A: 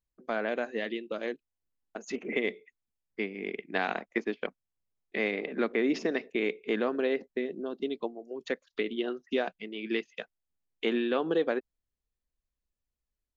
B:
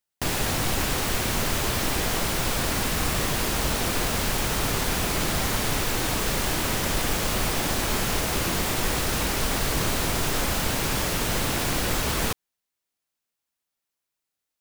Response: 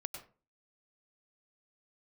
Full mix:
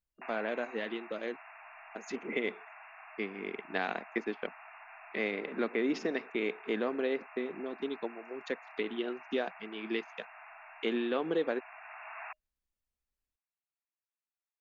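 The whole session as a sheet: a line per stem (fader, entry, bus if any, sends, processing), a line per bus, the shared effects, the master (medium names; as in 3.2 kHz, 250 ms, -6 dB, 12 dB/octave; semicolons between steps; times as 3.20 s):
-3.5 dB, 0.00 s, no send, none
-12.0 dB, 0.00 s, no send, FFT band-pass 620–2800 Hz; auto duck -8 dB, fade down 1.20 s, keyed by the first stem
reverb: none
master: none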